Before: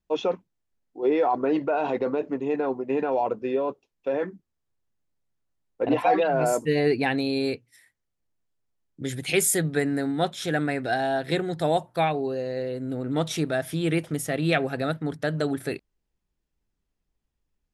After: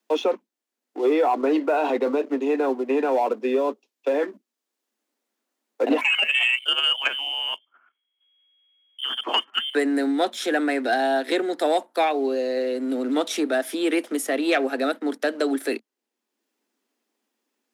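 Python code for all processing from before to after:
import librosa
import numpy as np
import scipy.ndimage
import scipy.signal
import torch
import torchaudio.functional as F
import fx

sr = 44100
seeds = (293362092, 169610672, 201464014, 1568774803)

y = fx.chain(x, sr, fx.peak_eq(hz=1100.0, db=14.0, octaves=0.27),
    fx.level_steps(step_db=11),
    fx.freq_invert(carrier_hz=3300), at=(6.01, 9.75))
y = fx.leveller(y, sr, passes=1)
y = scipy.signal.sosfilt(scipy.signal.butter(16, 220.0, 'highpass', fs=sr, output='sos'), y)
y = fx.band_squash(y, sr, depth_pct=40)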